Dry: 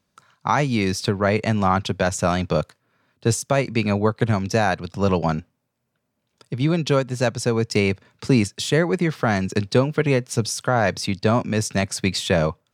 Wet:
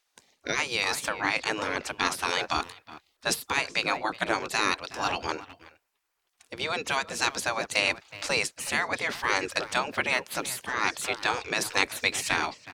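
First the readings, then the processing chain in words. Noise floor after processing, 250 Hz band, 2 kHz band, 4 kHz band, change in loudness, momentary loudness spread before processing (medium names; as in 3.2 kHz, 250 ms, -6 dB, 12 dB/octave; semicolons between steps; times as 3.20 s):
-76 dBFS, -16.5 dB, +0.5 dB, 0.0 dB, -6.0 dB, 4 LU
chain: gain riding 0.5 s; speakerphone echo 370 ms, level -16 dB; spectral gate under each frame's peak -15 dB weak; trim +4 dB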